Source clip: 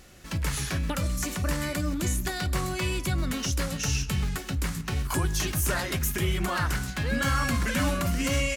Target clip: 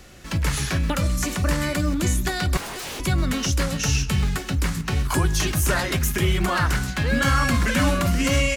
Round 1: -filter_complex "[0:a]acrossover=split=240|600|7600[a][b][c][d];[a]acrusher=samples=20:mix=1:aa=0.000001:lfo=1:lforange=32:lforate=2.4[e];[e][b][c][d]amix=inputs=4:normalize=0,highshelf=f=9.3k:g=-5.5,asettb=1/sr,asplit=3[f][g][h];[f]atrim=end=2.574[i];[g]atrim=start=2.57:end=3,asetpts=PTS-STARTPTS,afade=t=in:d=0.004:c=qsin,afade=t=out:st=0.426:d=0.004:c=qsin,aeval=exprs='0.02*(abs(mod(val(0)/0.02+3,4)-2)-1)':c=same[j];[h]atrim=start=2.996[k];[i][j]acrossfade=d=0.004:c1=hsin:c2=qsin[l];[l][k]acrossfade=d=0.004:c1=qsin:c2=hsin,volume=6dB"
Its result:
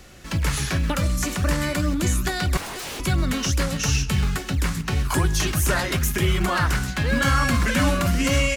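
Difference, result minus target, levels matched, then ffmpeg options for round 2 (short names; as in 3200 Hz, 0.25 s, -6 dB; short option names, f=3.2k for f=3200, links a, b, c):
decimation with a swept rate: distortion +10 dB
-filter_complex "[0:a]acrossover=split=240|600|7600[a][b][c][d];[a]acrusher=samples=7:mix=1:aa=0.000001:lfo=1:lforange=11.2:lforate=2.4[e];[e][b][c][d]amix=inputs=4:normalize=0,highshelf=f=9.3k:g=-5.5,asettb=1/sr,asplit=3[f][g][h];[f]atrim=end=2.574[i];[g]atrim=start=2.57:end=3,asetpts=PTS-STARTPTS,afade=t=in:d=0.004:c=qsin,afade=t=out:st=0.426:d=0.004:c=qsin,aeval=exprs='0.02*(abs(mod(val(0)/0.02+3,4)-2)-1)':c=same[j];[h]atrim=start=2.996[k];[i][j]acrossfade=d=0.004:c1=hsin:c2=qsin[l];[l][k]acrossfade=d=0.004:c1=qsin:c2=hsin,volume=6dB"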